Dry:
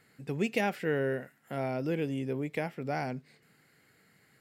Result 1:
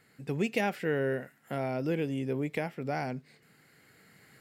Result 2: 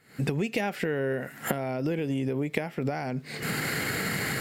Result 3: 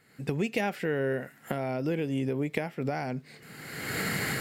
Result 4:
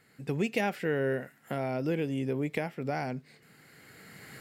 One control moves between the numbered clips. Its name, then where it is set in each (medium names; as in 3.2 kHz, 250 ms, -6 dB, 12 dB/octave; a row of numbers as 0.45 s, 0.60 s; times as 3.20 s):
recorder AGC, rising by: 5 dB/s, 91 dB/s, 36 dB/s, 13 dB/s